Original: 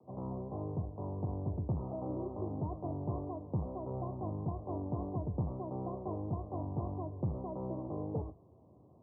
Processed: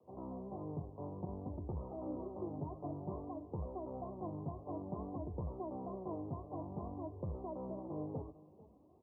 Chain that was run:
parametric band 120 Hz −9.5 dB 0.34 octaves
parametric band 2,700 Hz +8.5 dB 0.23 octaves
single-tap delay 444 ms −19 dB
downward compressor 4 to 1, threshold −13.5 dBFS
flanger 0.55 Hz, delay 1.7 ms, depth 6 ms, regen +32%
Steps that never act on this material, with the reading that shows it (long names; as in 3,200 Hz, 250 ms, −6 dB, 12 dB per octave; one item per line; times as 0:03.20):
parametric band 2,700 Hz: nothing at its input above 1,100 Hz
downward compressor, threshold −13.5 dBFS: peak of its input −25.0 dBFS